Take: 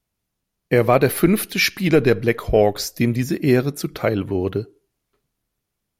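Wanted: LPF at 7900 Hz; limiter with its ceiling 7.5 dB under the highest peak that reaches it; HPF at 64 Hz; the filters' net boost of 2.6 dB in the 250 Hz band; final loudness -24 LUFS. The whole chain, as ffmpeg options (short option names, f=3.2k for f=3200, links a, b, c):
-af "highpass=64,lowpass=7.9k,equalizer=f=250:t=o:g=3.5,volume=-3dB,alimiter=limit=-11.5dB:level=0:latency=1"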